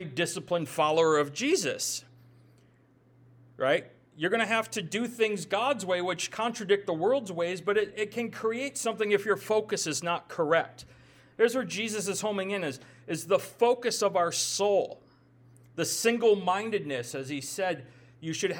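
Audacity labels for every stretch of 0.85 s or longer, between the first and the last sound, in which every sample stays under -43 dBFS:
2.010000	3.590000	silence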